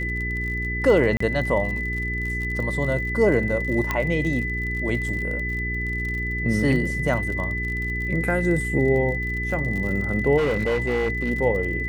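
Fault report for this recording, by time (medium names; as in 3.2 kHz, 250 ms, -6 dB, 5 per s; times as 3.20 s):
crackle 50 per s -30 dBFS
hum 60 Hz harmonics 7 -29 dBFS
whine 2 kHz -27 dBFS
1.17–1.20 s: dropout 34 ms
3.91 s: pop -9 dBFS
10.37–11.31 s: clipped -18.5 dBFS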